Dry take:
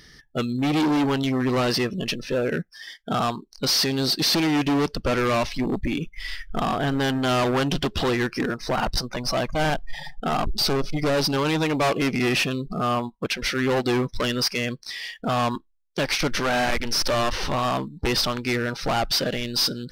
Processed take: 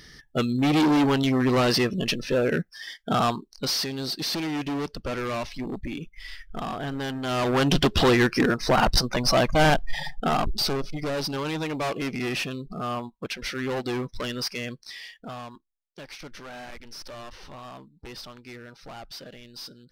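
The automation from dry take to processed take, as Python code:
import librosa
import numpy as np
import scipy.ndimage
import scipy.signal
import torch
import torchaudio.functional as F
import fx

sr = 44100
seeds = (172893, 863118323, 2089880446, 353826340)

y = fx.gain(x, sr, db=fx.line((3.33, 1.0), (3.9, -7.5), (7.22, -7.5), (7.75, 4.0), (10.01, 4.0), (10.96, -6.5), (14.99, -6.5), (15.51, -18.0)))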